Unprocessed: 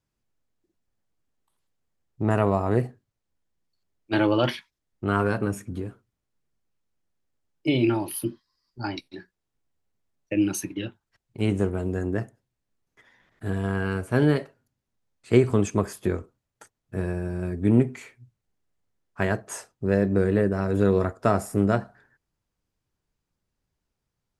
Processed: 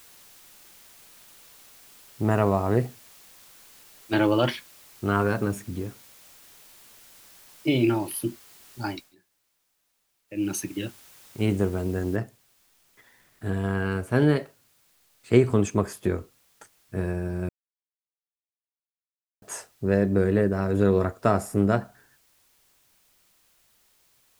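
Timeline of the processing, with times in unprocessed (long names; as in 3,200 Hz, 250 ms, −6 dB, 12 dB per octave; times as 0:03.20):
0:08.88–0:10.55: duck −21.5 dB, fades 0.27 s
0:12.16: noise floor change −52 dB −64 dB
0:17.49–0:19.42: silence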